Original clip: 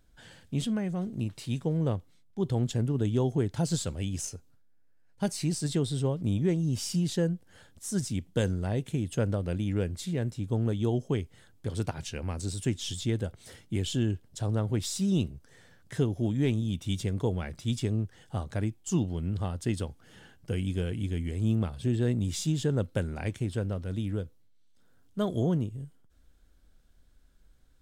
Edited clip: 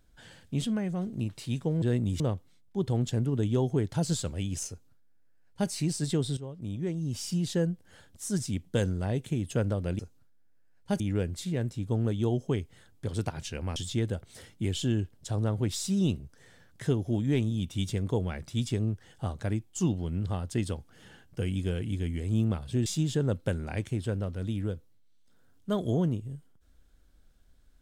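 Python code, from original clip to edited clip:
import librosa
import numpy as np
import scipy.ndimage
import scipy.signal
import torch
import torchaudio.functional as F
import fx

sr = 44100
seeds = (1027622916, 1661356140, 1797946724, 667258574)

y = fx.edit(x, sr, fx.duplicate(start_s=4.31, length_s=1.01, to_s=9.61),
    fx.fade_in_from(start_s=5.99, length_s=1.25, floor_db=-14.0),
    fx.cut(start_s=12.37, length_s=0.5),
    fx.move(start_s=21.97, length_s=0.38, to_s=1.82), tone=tone)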